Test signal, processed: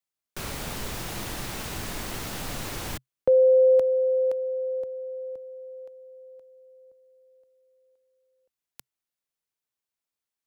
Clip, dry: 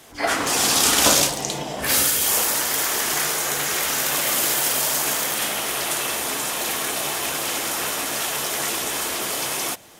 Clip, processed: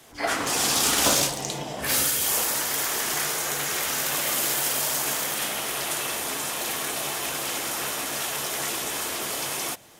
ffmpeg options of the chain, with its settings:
ffmpeg -i in.wav -filter_complex "[0:a]equalizer=frequency=130:width=5.8:gain=4,acrossover=split=130|940[link_01][link_02][link_03];[link_03]volume=12dB,asoftclip=hard,volume=-12dB[link_04];[link_01][link_02][link_04]amix=inputs=3:normalize=0,volume=-4dB" out.wav

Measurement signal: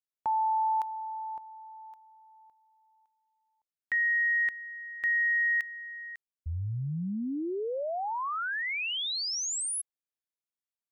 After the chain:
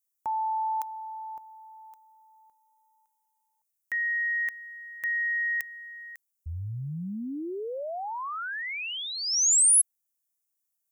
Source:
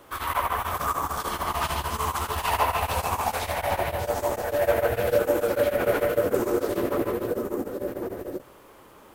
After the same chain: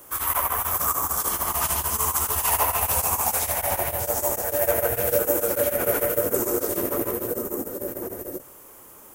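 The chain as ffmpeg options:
ffmpeg -i in.wav -af "aexciter=amount=5.6:drive=4.7:freq=5800,volume=-1.5dB" out.wav

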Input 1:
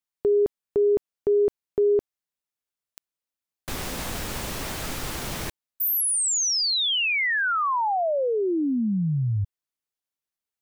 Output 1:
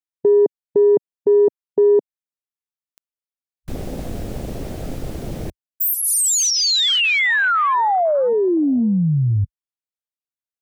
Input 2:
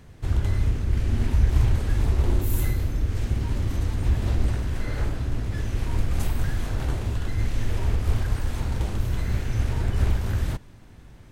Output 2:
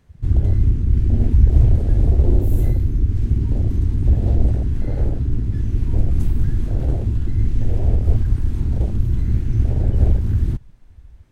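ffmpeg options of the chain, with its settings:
ffmpeg -i in.wav -af "afwtdn=0.0355,volume=7dB" out.wav

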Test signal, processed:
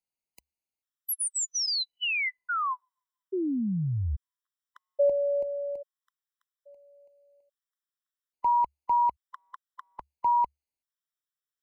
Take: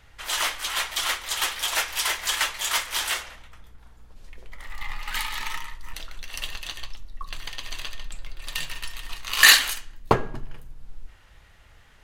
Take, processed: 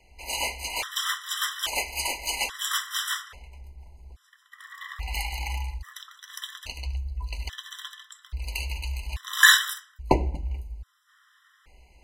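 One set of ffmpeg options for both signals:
ffmpeg -i in.wav -af "afreqshift=-72,afftfilt=real='re*gt(sin(2*PI*0.6*pts/sr)*(1-2*mod(floor(b*sr/1024/1000),2)),0)':imag='im*gt(sin(2*PI*0.6*pts/sr)*(1-2*mod(floor(b*sr/1024/1000),2)),0)':win_size=1024:overlap=0.75" out.wav

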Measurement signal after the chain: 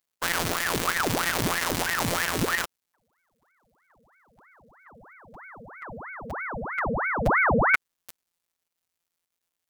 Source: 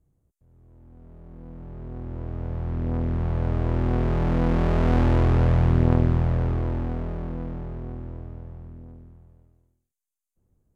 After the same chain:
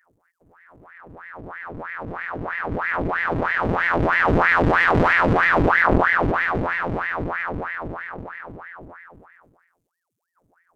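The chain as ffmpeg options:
ffmpeg -i in.wav -af "afftfilt=real='hypot(re,im)*cos(PI*b)':imag='0':win_size=1024:overlap=0.75,acontrast=42,aeval=exprs='val(0)*sin(2*PI*1000*n/s+1000*0.9/3.1*sin(2*PI*3.1*n/s))':channel_layout=same,volume=4.5dB" out.wav

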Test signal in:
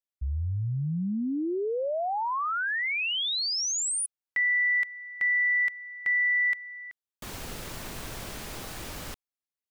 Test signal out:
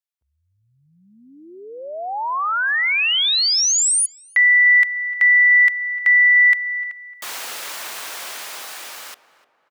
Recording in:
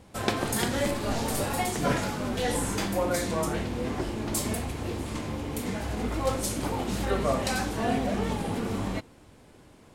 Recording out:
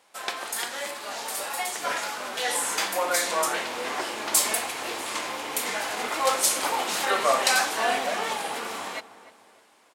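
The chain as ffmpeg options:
ffmpeg -i in.wav -filter_complex "[0:a]dynaudnorm=framelen=920:gausssize=5:maxgain=12dB,highpass=850,asplit=2[link_01][link_02];[link_02]adelay=301,lowpass=frequency=1600:poles=1,volume=-15dB,asplit=2[link_03][link_04];[link_04]adelay=301,lowpass=frequency=1600:poles=1,volume=0.47,asplit=2[link_05][link_06];[link_06]adelay=301,lowpass=frequency=1600:poles=1,volume=0.47,asplit=2[link_07][link_08];[link_08]adelay=301,lowpass=frequency=1600:poles=1,volume=0.47[link_09];[link_01][link_03][link_05][link_07][link_09]amix=inputs=5:normalize=0" out.wav

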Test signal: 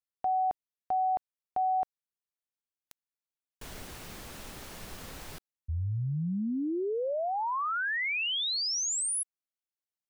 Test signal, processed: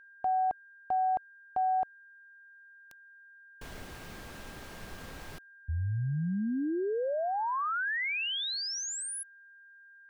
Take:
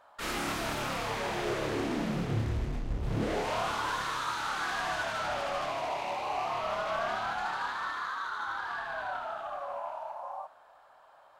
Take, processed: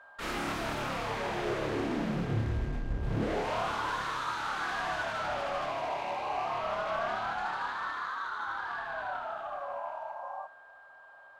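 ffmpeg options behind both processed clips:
ffmpeg -i in.wav -af "highshelf=frequency=4600:gain=-8,aeval=exprs='val(0)+0.00224*sin(2*PI*1600*n/s)':channel_layout=same" out.wav

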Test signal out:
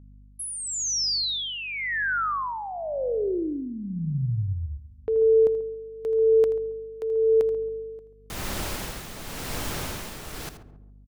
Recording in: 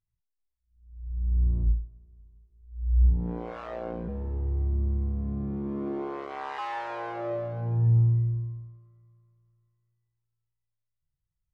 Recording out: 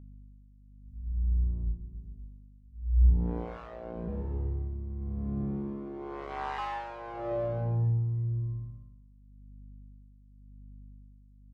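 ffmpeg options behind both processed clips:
ffmpeg -i in.wav -filter_complex "[0:a]agate=range=-33dB:threshold=-51dB:ratio=3:detection=peak,asplit=2[link_01][link_02];[link_02]aecho=0:1:81:0.2[link_03];[link_01][link_03]amix=inputs=2:normalize=0,aeval=exprs='val(0)+0.00447*(sin(2*PI*50*n/s)+sin(2*PI*2*50*n/s)/2+sin(2*PI*3*50*n/s)/3+sin(2*PI*4*50*n/s)/4+sin(2*PI*5*50*n/s)/5)':channel_layout=same,asplit=2[link_04][link_05];[link_05]adelay=137,lowpass=frequency=820:poles=1,volume=-13dB,asplit=2[link_06][link_07];[link_07]adelay=137,lowpass=frequency=820:poles=1,volume=0.47,asplit=2[link_08][link_09];[link_09]adelay=137,lowpass=frequency=820:poles=1,volume=0.47,asplit=2[link_10][link_11];[link_11]adelay=137,lowpass=frequency=820:poles=1,volume=0.47,asplit=2[link_12][link_13];[link_13]adelay=137,lowpass=frequency=820:poles=1,volume=0.47[link_14];[link_06][link_08][link_10][link_12][link_14]amix=inputs=5:normalize=0[link_15];[link_04][link_15]amix=inputs=2:normalize=0,tremolo=f=0.93:d=0.63" out.wav

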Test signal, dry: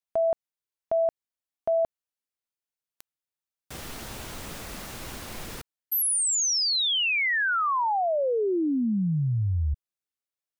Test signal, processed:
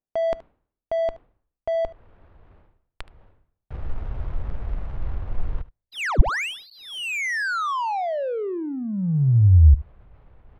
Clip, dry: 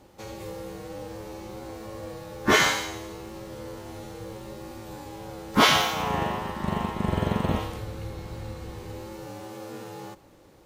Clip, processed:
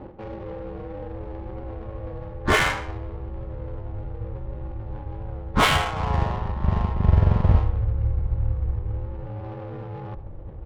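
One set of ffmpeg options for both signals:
ffmpeg -i in.wav -filter_complex "[0:a]acrusher=samples=5:mix=1:aa=0.000001,asubboost=boost=11:cutoff=76,areverse,acompressor=mode=upward:threshold=-29dB:ratio=4:attack=8.9:release=251:knee=2.83:detection=peak,areverse,lowpass=frequency=4100:width=0.5412,lowpass=frequency=4100:width=1.3066,adynamicsmooth=sensitivity=2.5:basefreq=630,asplit=2[link_01][link_02];[link_02]aecho=0:1:74:0.119[link_03];[link_01][link_03]amix=inputs=2:normalize=0,volume=1dB" out.wav

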